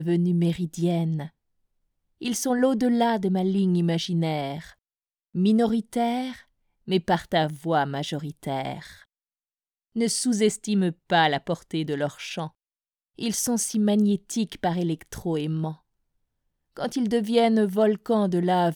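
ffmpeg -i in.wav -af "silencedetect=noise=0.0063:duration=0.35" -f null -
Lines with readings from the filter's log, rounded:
silence_start: 1.28
silence_end: 2.21 | silence_duration: 0.93
silence_start: 4.72
silence_end: 5.35 | silence_duration: 0.63
silence_start: 6.41
silence_end: 6.88 | silence_duration: 0.47
silence_start: 9.02
silence_end: 9.96 | silence_duration: 0.94
silence_start: 12.48
silence_end: 13.19 | silence_duration: 0.70
silence_start: 15.75
silence_end: 16.77 | silence_duration: 1.02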